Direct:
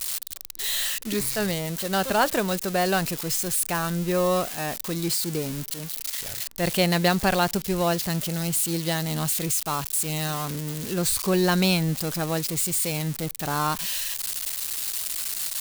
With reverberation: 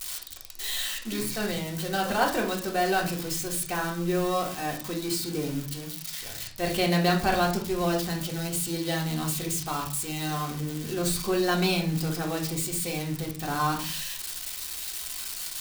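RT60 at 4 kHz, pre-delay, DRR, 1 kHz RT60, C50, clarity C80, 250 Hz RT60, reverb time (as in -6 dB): 0.35 s, 3 ms, -2.0 dB, 0.45 s, 8.5 dB, 13.5 dB, 0.60 s, 0.45 s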